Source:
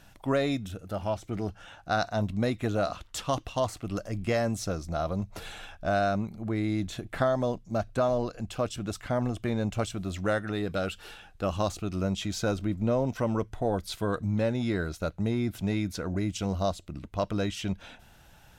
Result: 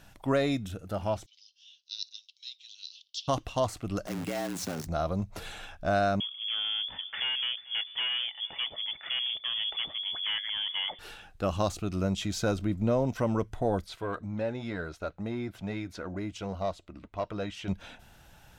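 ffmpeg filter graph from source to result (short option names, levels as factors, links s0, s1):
-filter_complex "[0:a]asettb=1/sr,asplit=3[s0][s1][s2];[s0]atrim=end=1.264[s3];[s1]atrim=start=1.26:end=3.28,asetpts=PTS-STARTPTS,afade=t=in:d=0.004:c=qsin,afade=t=out:st=2.016:d=0.004:c=qsin,asuperpass=centerf=4200:order=8:qfactor=1.5,highshelf=f=4600:g=5.5[s4];[s2]atrim=start=3.276[s5];[s3][s4]acrossfade=d=0.004:c1=hsin:c2=qsin[s6];[s6][s5]acrossfade=d=0.004:c1=qsin:c2=hsin,asettb=1/sr,asplit=3[s7][s8][s9];[s7]atrim=end=4.074[s10];[s8]atrim=start=4.07:end=4.87,asetpts=PTS-STARTPTS,afade=t=in:d=0.004:c=qsin,afade=t=out:st=0.796:d=0.004:c=qsin,acompressor=threshold=0.0355:ratio=12:attack=3.2:release=140:knee=1:detection=peak,acrusher=bits=7:dc=4:mix=0:aa=0.000001,afreqshift=78[s11];[s9]atrim=start=4.866[s12];[s10][s11]acrossfade=d=0.004:c1=hsin:c2=qsin[s13];[s13][s12]acrossfade=d=0.004:c1=qsin:c2=hsin,asettb=1/sr,asplit=3[s14][s15][s16];[s14]atrim=end=6.204[s17];[s15]atrim=start=6.2:end=10.99,asetpts=PTS-STARTPTS,afade=t=in:d=0.004:c=qsin,afade=t=out:st=4.786:d=0.004:c=qsin,asoftclip=type=hard:threshold=0.0355,aecho=1:1:442:0.0794,atrim=end_sample=211239,lowpass=f=3000:t=q:w=0.5098,lowpass=f=3000:t=q:w=0.6013,lowpass=f=3000:t=q:w=0.9,lowpass=f=3000:t=q:w=2.563,afreqshift=-3500[s18];[s16]atrim=start=10.986[s19];[s17][s18]acrossfade=d=0.004:c1=hsin:c2=qsin[s20];[s20][s19]acrossfade=d=0.004:c1=qsin:c2=hsin,asettb=1/sr,asplit=3[s21][s22][s23];[s21]atrim=end=13.844[s24];[s22]atrim=start=13.84:end=17.68,asetpts=PTS-STARTPTS,afade=t=in:d=0.004:c=qsin,afade=t=out:st=3.836:d=0.004:c=qsin,flanger=delay=1.2:depth=2.7:regen=-64:speed=1.1:shape=triangular,asplit=2[s25][s26];[s26]highpass=f=720:p=1,volume=3.16,asoftclip=type=tanh:threshold=0.0944[s27];[s25][s27]amix=inputs=2:normalize=0,lowpass=f=1700:p=1,volume=0.501[s28];[s23]atrim=start=17.676[s29];[s24][s28]acrossfade=d=0.004:c1=hsin:c2=qsin[s30];[s30][s29]acrossfade=d=0.004:c1=qsin:c2=hsin"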